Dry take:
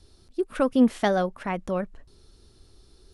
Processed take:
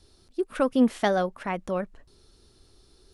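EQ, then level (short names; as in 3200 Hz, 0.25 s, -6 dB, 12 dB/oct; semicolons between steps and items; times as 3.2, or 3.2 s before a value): low shelf 190 Hz -5 dB; 0.0 dB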